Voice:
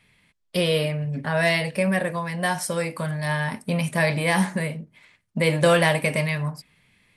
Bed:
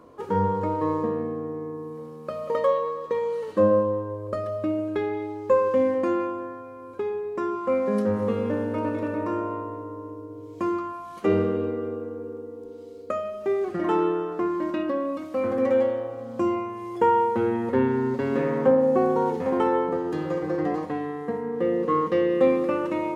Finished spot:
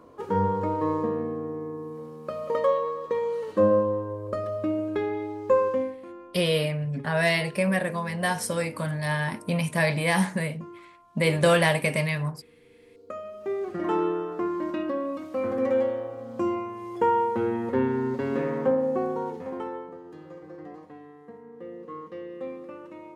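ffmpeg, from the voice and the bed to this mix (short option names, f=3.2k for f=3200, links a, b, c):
-filter_complex "[0:a]adelay=5800,volume=-2dB[a];[1:a]volume=15dB,afade=t=out:st=5.63:d=0.34:silence=0.133352,afade=t=in:st=12.62:d=1.31:silence=0.158489,afade=t=out:st=18.31:d=1.63:silence=0.199526[b];[a][b]amix=inputs=2:normalize=0"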